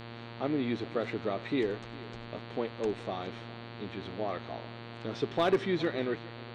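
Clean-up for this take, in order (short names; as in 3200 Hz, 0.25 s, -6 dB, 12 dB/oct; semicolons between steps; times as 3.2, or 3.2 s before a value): clip repair -19 dBFS; de-hum 116.7 Hz, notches 39; inverse comb 0.41 s -19.5 dB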